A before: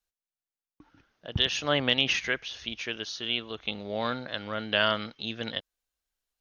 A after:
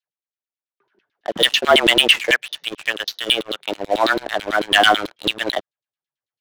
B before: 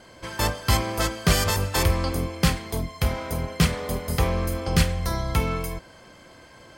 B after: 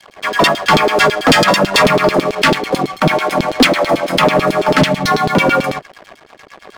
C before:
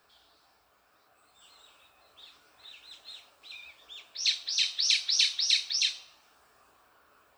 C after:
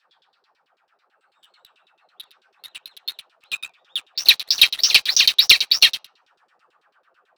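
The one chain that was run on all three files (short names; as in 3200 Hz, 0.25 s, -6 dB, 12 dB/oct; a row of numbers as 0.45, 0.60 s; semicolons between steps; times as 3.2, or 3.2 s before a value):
frequency shift +100 Hz; LFO band-pass saw down 9.1 Hz 320–4200 Hz; sample leveller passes 3; normalise peaks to -2 dBFS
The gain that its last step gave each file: +9.0, +13.0, +13.0 dB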